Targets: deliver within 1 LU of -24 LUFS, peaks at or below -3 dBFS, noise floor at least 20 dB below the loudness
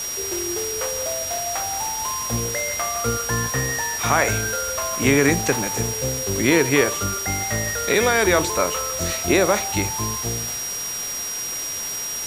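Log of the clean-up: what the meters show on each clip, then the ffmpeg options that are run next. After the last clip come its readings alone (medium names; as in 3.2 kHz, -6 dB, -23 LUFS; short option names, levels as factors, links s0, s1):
steady tone 5.7 kHz; tone level -27 dBFS; noise floor -28 dBFS; noise floor target -42 dBFS; loudness -21.5 LUFS; peak level -3.0 dBFS; loudness target -24.0 LUFS
-> -af "bandreject=f=5700:w=30"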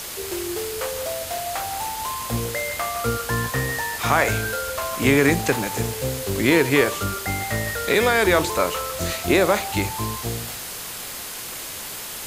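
steady tone not found; noise floor -33 dBFS; noise floor target -43 dBFS
-> -af "afftdn=nr=10:nf=-33"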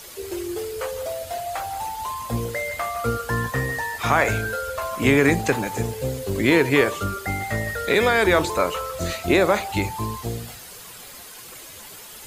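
noise floor -41 dBFS; noise floor target -43 dBFS
-> -af "afftdn=nr=6:nf=-41"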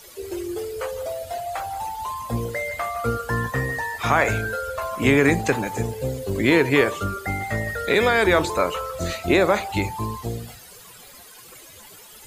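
noise floor -45 dBFS; loudness -23.0 LUFS; peak level -4.0 dBFS; loudness target -24.0 LUFS
-> -af "volume=0.891"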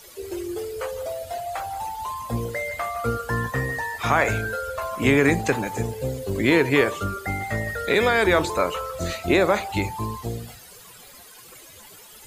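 loudness -24.0 LUFS; peak level -5.0 dBFS; noise floor -46 dBFS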